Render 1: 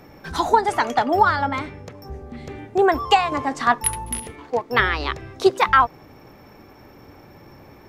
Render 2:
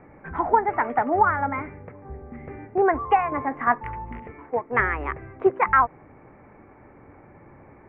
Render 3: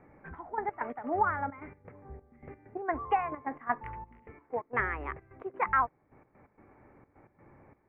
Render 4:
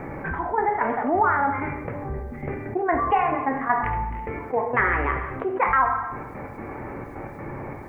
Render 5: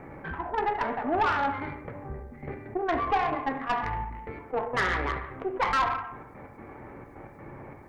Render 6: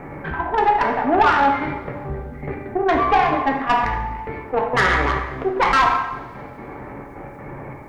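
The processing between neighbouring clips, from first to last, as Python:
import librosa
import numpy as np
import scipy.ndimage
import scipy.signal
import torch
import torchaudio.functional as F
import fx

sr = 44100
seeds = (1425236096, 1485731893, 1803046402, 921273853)

y1 = scipy.signal.sosfilt(scipy.signal.ellip(4, 1.0, 50, 2200.0, 'lowpass', fs=sr, output='sos'), x)
y1 = y1 * 10.0 ** (-2.5 / 20.0)
y2 = fx.step_gate(y1, sr, bpm=130, pattern='xxx..x.x.xxxx.x.', floor_db=-12.0, edge_ms=4.5)
y2 = y2 * 10.0 ** (-8.5 / 20.0)
y3 = fx.rev_plate(y2, sr, seeds[0], rt60_s=0.63, hf_ratio=0.95, predelay_ms=0, drr_db=4.0)
y3 = fx.env_flatten(y3, sr, amount_pct=50)
y3 = y3 * 10.0 ** (5.0 / 20.0)
y4 = fx.tube_stage(y3, sr, drive_db=18.0, bias=0.5)
y4 = fx.upward_expand(y4, sr, threshold_db=-38.0, expansion=1.5)
y5 = fx.rev_double_slope(y4, sr, seeds[1], early_s=0.72, late_s=2.5, knee_db=-18, drr_db=4.5)
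y5 = y5 * 10.0 ** (8.5 / 20.0)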